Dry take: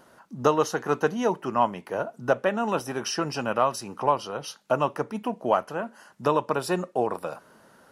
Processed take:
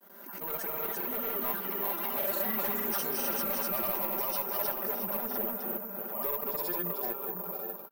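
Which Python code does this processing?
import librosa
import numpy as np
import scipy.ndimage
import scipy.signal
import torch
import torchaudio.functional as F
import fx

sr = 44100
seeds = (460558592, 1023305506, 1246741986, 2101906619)

p1 = fx.doppler_pass(x, sr, speed_mps=13, closest_m=7.1, pass_at_s=3.41)
p2 = fx.recorder_agc(p1, sr, target_db=-19.5, rise_db_per_s=9.8, max_gain_db=30)
p3 = fx.echo_pitch(p2, sr, ms=229, semitones=6, count=3, db_per_echo=-6.0)
p4 = scipy.signal.sosfilt(scipy.signal.ellip(4, 1.0, 40, 180.0, 'highpass', fs=sr, output='sos'), p3)
p5 = p4 + fx.echo_feedback(p4, sr, ms=318, feedback_pct=48, wet_db=-3, dry=0)
p6 = 10.0 ** (-30.0 / 20.0) * np.tanh(p5 / 10.0 ** (-30.0 / 20.0))
p7 = fx.granulator(p6, sr, seeds[0], grain_ms=100.0, per_s=20.0, spray_ms=100.0, spread_st=0)
p8 = p7 + 0.76 * np.pad(p7, (int(5.1 * sr / 1000.0), 0))[:len(p7)]
p9 = (np.kron(scipy.signal.resample_poly(p8, 1, 3), np.eye(3)[0]) * 3)[:len(p8)]
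p10 = fx.pre_swell(p9, sr, db_per_s=51.0)
y = p10 * 10.0 ** (-4.0 / 20.0)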